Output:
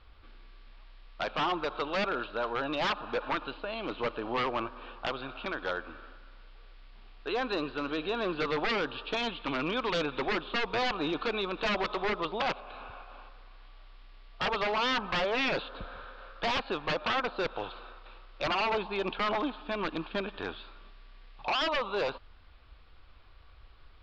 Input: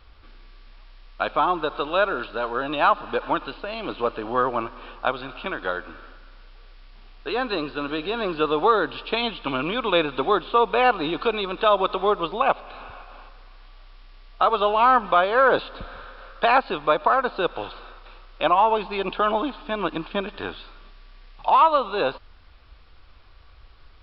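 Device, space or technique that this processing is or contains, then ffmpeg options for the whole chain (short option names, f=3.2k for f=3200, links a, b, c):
synthesiser wavefolder: -af "aeval=exprs='0.119*(abs(mod(val(0)/0.119+3,4)-2)-1)':c=same,lowpass=f=4.6k:w=0.5412,lowpass=f=4.6k:w=1.3066,volume=-5dB"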